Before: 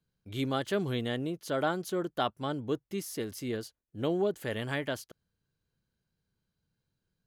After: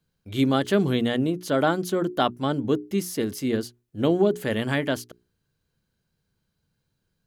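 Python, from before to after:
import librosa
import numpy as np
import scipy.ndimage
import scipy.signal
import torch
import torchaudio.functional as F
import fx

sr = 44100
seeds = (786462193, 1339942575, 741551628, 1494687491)

y = fx.hum_notches(x, sr, base_hz=60, count=7)
y = fx.dynamic_eq(y, sr, hz=230.0, q=1.3, threshold_db=-45.0, ratio=4.0, max_db=6)
y = y * librosa.db_to_amplitude(7.0)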